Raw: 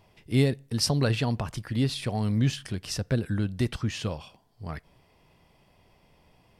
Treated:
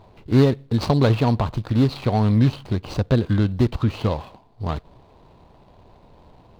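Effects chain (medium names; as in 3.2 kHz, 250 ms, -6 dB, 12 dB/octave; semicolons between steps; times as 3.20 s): median filter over 25 samples; treble shelf 3.5 kHz -7.5 dB; in parallel at -1 dB: compression, threshold -32 dBFS, peak gain reduction 14 dB; on the sum: fifteen-band graphic EQ 160 Hz -4 dB, 1 kHz +4 dB, 4 kHz +10 dB; trim +7 dB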